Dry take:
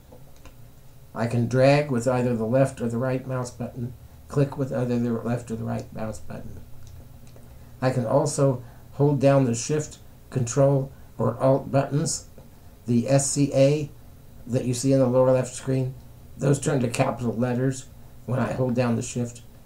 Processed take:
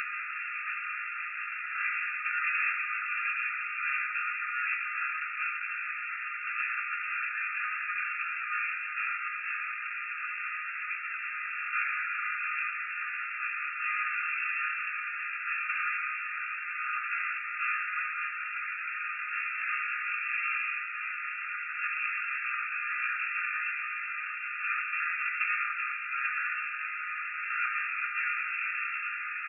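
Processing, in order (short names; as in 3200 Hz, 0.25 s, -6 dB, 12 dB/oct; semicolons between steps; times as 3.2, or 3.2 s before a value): per-bin compression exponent 0.2; brick-wall FIR band-pass 1200–2800 Hz; bell 1600 Hz -9 dB 2.6 oct; feedback echo 0.486 s, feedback 54%, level -18.5 dB; on a send at -12.5 dB: reverb RT60 0.65 s, pre-delay 3 ms; on the sum: plain phase-vocoder stretch 1.5×; gain +7.5 dB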